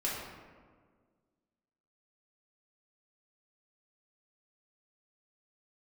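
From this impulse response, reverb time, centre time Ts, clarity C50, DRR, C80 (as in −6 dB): 1.7 s, 81 ms, 0.0 dB, −7.0 dB, 2.5 dB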